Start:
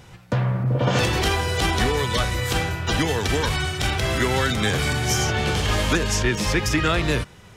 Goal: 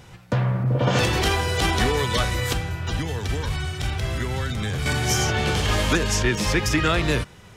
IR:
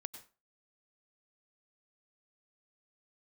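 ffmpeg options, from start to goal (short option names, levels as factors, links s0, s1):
-filter_complex "[0:a]asettb=1/sr,asplit=3[s0][s1][s2];[s0]atrim=end=2.534[s3];[s1]atrim=start=2.53:end=4.86,asetpts=PTS-STARTPTS,afade=t=in:d=0.004:c=qsin,afade=t=out:st=2.326:d=0.004:c=qsin,acrossover=split=160[s4][s5];[s5]acompressor=threshold=0.0158:ratio=2[s6];[s4][s6]amix=inputs=2:normalize=0[s7];[s2]atrim=start=4.856[s8];[s3][s7]acrossfade=d=0.004:c1=hsin:c2=qsin[s9];[s9][s8]acrossfade=d=0.004:c1=qsin:c2=hsin"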